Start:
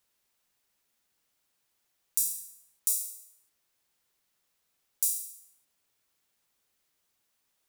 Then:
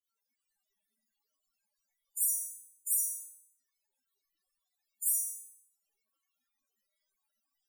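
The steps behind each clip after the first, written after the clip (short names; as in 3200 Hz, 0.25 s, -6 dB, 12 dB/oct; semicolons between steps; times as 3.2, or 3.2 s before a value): Schroeder reverb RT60 0.48 s, combs from 28 ms, DRR -9.5 dB; loudest bins only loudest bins 32; spectral noise reduction 9 dB; gain -6.5 dB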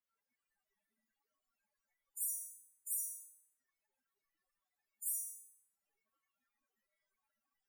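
resonant high shelf 2700 Hz -10 dB, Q 1.5; gain +1.5 dB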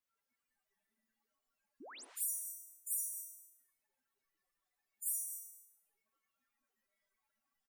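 painted sound rise, 1.8–2.05, 220–11000 Hz -53 dBFS; echo 0.25 s -17 dB; non-linear reverb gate 0.24 s rising, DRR 9.5 dB; gain +1 dB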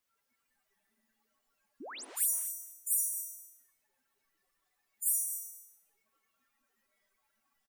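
speakerphone echo 0.27 s, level -8 dB; gain +7.5 dB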